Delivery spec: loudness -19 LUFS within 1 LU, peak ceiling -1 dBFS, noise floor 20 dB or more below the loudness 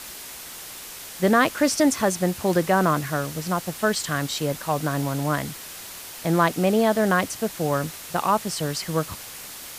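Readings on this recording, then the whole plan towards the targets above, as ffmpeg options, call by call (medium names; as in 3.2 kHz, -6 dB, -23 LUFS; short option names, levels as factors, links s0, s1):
noise floor -39 dBFS; noise floor target -44 dBFS; loudness -23.5 LUFS; peak level -6.5 dBFS; loudness target -19.0 LUFS
-> -af "afftdn=nr=6:nf=-39"
-af "volume=1.68"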